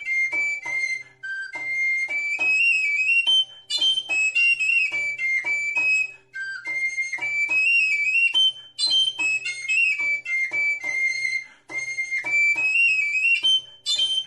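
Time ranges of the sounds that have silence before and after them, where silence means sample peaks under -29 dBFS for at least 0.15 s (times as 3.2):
1.24–3.43
3.7–6.06
6.36–8.5
8.79–11.42
11.7–13.59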